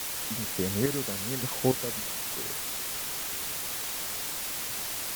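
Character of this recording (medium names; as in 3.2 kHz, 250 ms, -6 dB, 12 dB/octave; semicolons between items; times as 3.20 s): random-step tremolo, depth 95%; a quantiser's noise floor 6-bit, dither triangular; Vorbis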